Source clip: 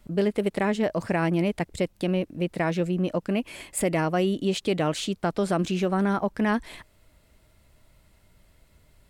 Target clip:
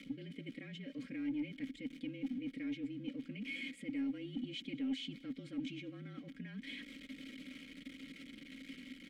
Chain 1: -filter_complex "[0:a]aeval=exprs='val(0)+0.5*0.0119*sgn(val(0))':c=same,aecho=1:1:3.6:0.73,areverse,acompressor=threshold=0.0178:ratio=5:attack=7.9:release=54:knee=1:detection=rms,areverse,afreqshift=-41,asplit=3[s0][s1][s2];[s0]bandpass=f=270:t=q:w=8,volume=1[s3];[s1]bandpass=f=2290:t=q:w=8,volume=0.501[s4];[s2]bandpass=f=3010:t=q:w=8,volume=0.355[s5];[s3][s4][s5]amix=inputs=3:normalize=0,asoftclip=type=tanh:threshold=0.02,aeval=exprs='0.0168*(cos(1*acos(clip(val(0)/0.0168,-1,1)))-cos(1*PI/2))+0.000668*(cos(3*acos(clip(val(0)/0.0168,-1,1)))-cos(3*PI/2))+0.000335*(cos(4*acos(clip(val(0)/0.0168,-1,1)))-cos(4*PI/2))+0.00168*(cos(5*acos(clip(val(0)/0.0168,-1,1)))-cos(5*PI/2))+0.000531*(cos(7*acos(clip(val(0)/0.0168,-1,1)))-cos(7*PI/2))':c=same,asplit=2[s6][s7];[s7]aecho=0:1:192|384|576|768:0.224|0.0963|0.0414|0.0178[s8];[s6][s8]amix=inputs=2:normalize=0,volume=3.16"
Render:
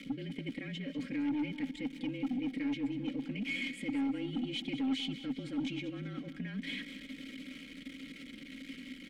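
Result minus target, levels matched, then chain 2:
echo-to-direct +11 dB; compression: peak gain reduction -7 dB
-filter_complex "[0:a]aeval=exprs='val(0)+0.5*0.0119*sgn(val(0))':c=same,aecho=1:1:3.6:0.73,areverse,acompressor=threshold=0.00631:ratio=5:attack=7.9:release=54:knee=1:detection=rms,areverse,afreqshift=-41,asplit=3[s0][s1][s2];[s0]bandpass=f=270:t=q:w=8,volume=1[s3];[s1]bandpass=f=2290:t=q:w=8,volume=0.501[s4];[s2]bandpass=f=3010:t=q:w=8,volume=0.355[s5];[s3][s4][s5]amix=inputs=3:normalize=0,asoftclip=type=tanh:threshold=0.02,aeval=exprs='0.0168*(cos(1*acos(clip(val(0)/0.0168,-1,1)))-cos(1*PI/2))+0.000668*(cos(3*acos(clip(val(0)/0.0168,-1,1)))-cos(3*PI/2))+0.000335*(cos(4*acos(clip(val(0)/0.0168,-1,1)))-cos(4*PI/2))+0.00168*(cos(5*acos(clip(val(0)/0.0168,-1,1)))-cos(5*PI/2))+0.000531*(cos(7*acos(clip(val(0)/0.0168,-1,1)))-cos(7*PI/2))':c=same,asplit=2[s6][s7];[s7]aecho=0:1:192|384|576:0.0631|0.0271|0.0117[s8];[s6][s8]amix=inputs=2:normalize=0,volume=3.16"

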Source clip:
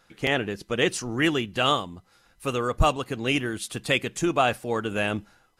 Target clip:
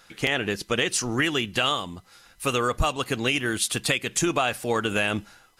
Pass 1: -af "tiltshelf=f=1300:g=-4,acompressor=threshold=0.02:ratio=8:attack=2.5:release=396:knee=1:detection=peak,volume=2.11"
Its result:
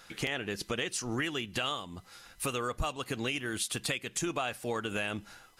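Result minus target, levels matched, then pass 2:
compression: peak gain reduction +9.5 dB
-af "tiltshelf=f=1300:g=-4,acompressor=threshold=0.0708:ratio=8:attack=2.5:release=396:knee=1:detection=peak,volume=2.11"

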